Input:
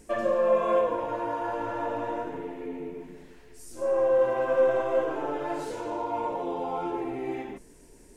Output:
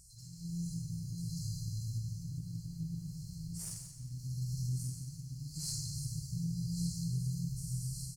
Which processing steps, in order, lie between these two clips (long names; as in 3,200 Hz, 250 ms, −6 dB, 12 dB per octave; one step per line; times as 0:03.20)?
mains-hum notches 50/100/150/200/250/300/350/400/450 Hz
double-tracking delay 48 ms −7 dB
delay that swaps between a low-pass and a high-pass 589 ms, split 870 Hz, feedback 71%, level −5 dB
brick-wall band-stop 180–4,100 Hz
soft clipping −34 dBFS, distortion −24 dB
0:01.99–0:04.19: high-shelf EQ 3,900 Hz −3 dB
automatic gain control gain up to 14 dB
dynamic equaliser 170 Hz, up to +4 dB, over −48 dBFS, Q 0.92
downward compressor 6 to 1, threshold −30 dBFS, peak gain reduction 6.5 dB
high-pass filter 85 Hz 6 dB per octave
feedback echo at a low word length 174 ms, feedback 35%, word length 11 bits, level −11 dB